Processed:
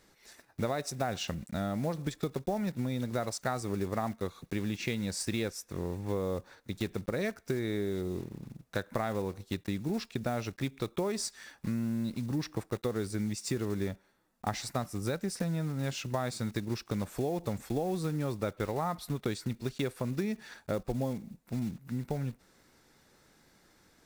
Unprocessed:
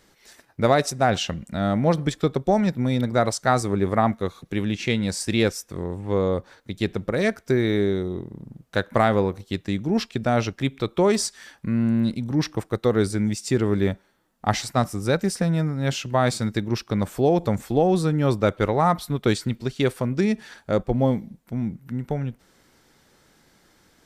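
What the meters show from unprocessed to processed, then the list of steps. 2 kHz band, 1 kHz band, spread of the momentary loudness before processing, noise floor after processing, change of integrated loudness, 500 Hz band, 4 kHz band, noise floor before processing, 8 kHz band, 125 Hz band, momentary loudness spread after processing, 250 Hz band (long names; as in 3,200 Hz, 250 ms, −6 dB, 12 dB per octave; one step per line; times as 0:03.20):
−11.5 dB, −13.0 dB, 9 LU, −67 dBFS, −11.5 dB, −12.0 dB, −10.0 dB, −61 dBFS, −8.0 dB, −10.5 dB, 5 LU, −11.0 dB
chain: one scale factor per block 5 bits
notch filter 3,100 Hz, Q 14
downward compressor, threshold −24 dBFS, peak gain reduction 11 dB
level −5 dB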